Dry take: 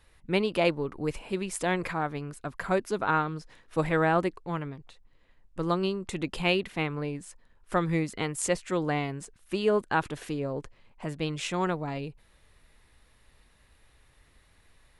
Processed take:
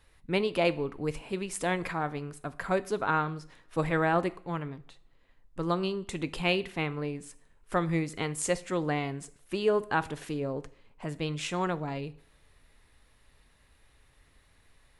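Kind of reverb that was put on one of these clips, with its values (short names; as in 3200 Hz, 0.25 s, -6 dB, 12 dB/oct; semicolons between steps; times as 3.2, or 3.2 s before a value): two-slope reverb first 0.48 s, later 2.2 s, from -27 dB, DRR 14 dB; gain -1.5 dB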